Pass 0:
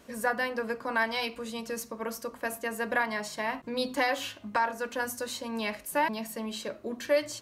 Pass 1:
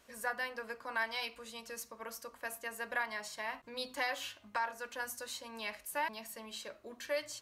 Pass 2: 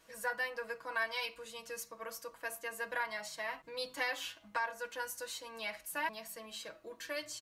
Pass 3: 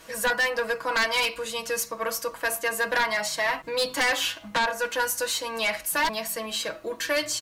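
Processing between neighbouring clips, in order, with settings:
parametric band 210 Hz −11.5 dB 2.8 octaves; level −5.5 dB
comb filter 6.2 ms, depth 81%; level −2 dB
sine wavefolder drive 10 dB, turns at −21.5 dBFS; level +2.5 dB

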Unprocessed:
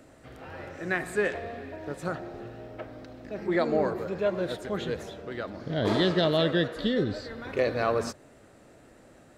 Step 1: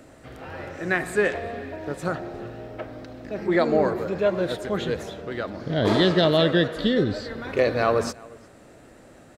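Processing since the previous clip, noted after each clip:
slap from a distant wall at 61 metres, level −23 dB
level +5 dB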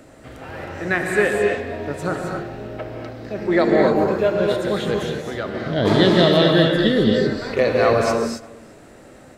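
reverb whose tail is shaped and stops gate 290 ms rising, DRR 1 dB
level +2.5 dB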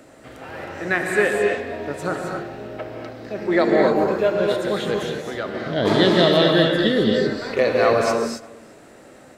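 low-shelf EQ 120 Hz −11 dB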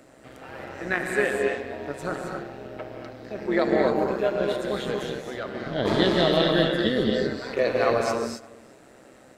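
amplitude modulation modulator 130 Hz, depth 40%
level −2.5 dB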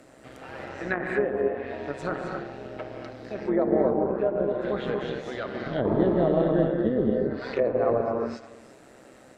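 treble cut that deepens with the level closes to 800 Hz, closed at −20.5 dBFS

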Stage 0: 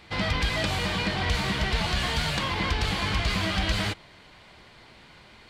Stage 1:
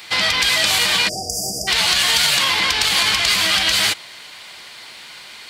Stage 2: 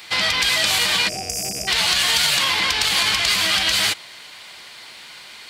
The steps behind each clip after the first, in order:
brickwall limiter −20 dBFS, peak gain reduction 5 dB; spectral tilt +4.5 dB per octave; time-frequency box erased 0:01.09–0:01.68, 780–4,700 Hz; level +9 dB
loose part that buzzes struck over −38 dBFS, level −23 dBFS; level −2 dB

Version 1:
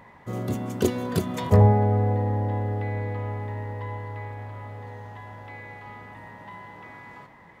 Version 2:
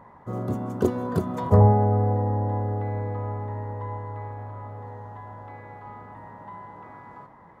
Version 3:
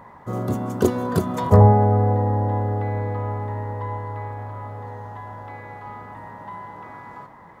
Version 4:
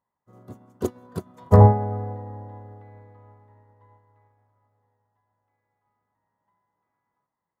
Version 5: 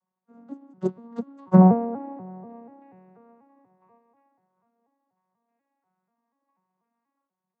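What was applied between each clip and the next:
high shelf with overshoot 1,700 Hz −10.5 dB, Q 1.5
high-shelf EQ 2,000 Hz +8 dB; level +3.5 dB
expander for the loud parts 2.5 to 1, over −36 dBFS; level +1 dB
vocoder with an arpeggio as carrier major triad, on F#3, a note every 243 ms

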